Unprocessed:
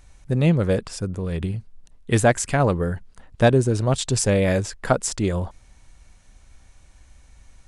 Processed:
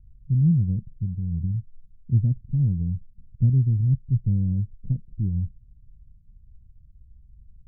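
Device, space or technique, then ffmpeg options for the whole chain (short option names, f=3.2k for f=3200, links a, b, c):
the neighbour's flat through the wall: -af "lowpass=f=180:w=0.5412,lowpass=f=180:w=1.3066,equalizer=f=120:t=o:w=0.77:g=3"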